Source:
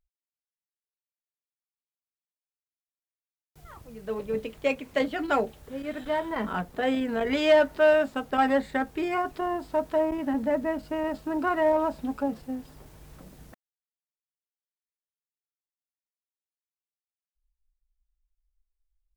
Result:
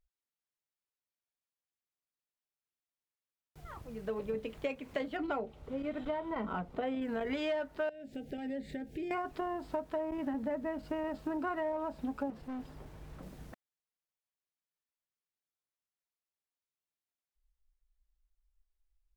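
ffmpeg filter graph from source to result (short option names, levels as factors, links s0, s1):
-filter_complex "[0:a]asettb=1/sr,asplit=3[s0][s1][s2];[s0]atrim=end=5.174[s3];[s1]atrim=start=5.17:end=7.02,asetpts=PTS-STARTPTS,afade=t=in:d=0.004:c=qsin,afade=t=out:st=1.846:d=0.004:c=qsin,lowpass=f=2800:p=1,bandreject=f=1700:w=5.4[s4];[s2]atrim=start=7.016[s5];[s3][s4]acrossfade=d=0.004:c1=hsin:c2=qsin[s6];[s6][s5]acrossfade=d=0.004:c1=qsin:c2=hsin,asettb=1/sr,asplit=3[s7][s8][s9];[s7]atrim=end=7.894[s10];[s8]atrim=start=7.89:end=9.11,asetpts=PTS-STARTPTS,afade=t=in:d=0.004:c=qsin,afade=t=out:st=1.216:d=0.004:c=qsin,equalizer=f=200:t=o:w=2.2:g=5,acompressor=threshold=0.0112:ratio=3:attack=3.2:release=140:knee=1:detection=peak,asuperstop=centerf=1100:order=4:qfactor=0.85[s11];[s9]atrim=start=9.106[s12];[s10][s11]acrossfade=d=0.004:c1=hsin:c2=qsin[s13];[s13][s12]acrossfade=d=0.004:c1=qsin:c2=hsin,asettb=1/sr,asplit=3[s14][s15][s16];[s14]atrim=end=12.304[s17];[s15]atrim=start=12.3:end=13.23,asetpts=PTS-STARTPTS,afade=t=in:d=0.004:c=qsin,afade=t=out:st=0.926:d=0.004:c=qsin,highshelf=f=4200:g=-5.5,asoftclip=type=hard:threshold=0.0126[s18];[s16]atrim=start=13.226[s19];[s17][s18]acrossfade=d=0.004:c1=hsin:c2=qsin[s20];[s20][s19]acrossfade=d=0.004:c1=qsin:c2=hsin,highshelf=f=5400:g=-8,acompressor=threshold=0.0224:ratio=6"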